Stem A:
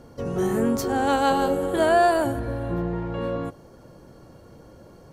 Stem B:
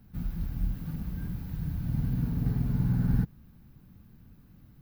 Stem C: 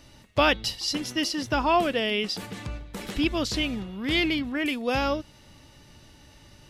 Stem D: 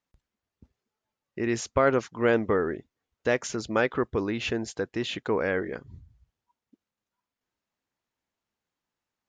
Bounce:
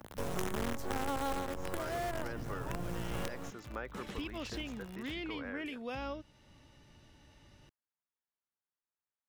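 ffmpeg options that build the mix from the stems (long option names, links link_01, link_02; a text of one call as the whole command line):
ffmpeg -i stem1.wav -i stem2.wav -i stem3.wav -i stem4.wav -filter_complex "[0:a]acrusher=bits=4:dc=4:mix=0:aa=0.000001,adynamicequalizer=threshold=0.0178:dfrequency=2300:dqfactor=0.7:tfrequency=2300:tqfactor=0.7:attack=5:release=100:ratio=0.375:range=2:mode=cutabove:tftype=highshelf,volume=0.5dB[link_01];[1:a]acompressor=mode=upward:threshold=-40dB:ratio=2.5,volume=-14.5dB[link_02];[2:a]highshelf=frequency=6900:gain=-9.5,alimiter=limit=-20.5dB:level=0:latency=1:release=442,adelay=1000,volume=-8dB,afade=type=in:start_time=3.63:duration=0.29:silence=0.334965[link_03];[3:a]equalizer=frequency=1300:width_type=o:width=1.7:gain=7.5,volume=-19.5dB,asplit=2[link_04][link_05];[link_05]apad=whole_len=225801[link_06];[link_01][link_06]sidechaincompress=threshold=-46dB:ratio=6:attack=16:release=838[link_07];[link_07][link_02][link_03][link_04]amix=inputs=4:normalize=0,equalizer=frequency=4500:width_type=o:width=0.29:gain=-3.5,acrossover=split=95|750[link_08][link_09][link_10];[link_08]acompressor=threshold=-38dB:ratio=4[link_11];[link_09]acompressor=threshold=-40dB:ratio=4[link_12];[link_10]acompressor=threshold=-41dB:ratio=4[link_13];[link_11][link_12][link_13]amix=inputs=3:normalize=0" out.wav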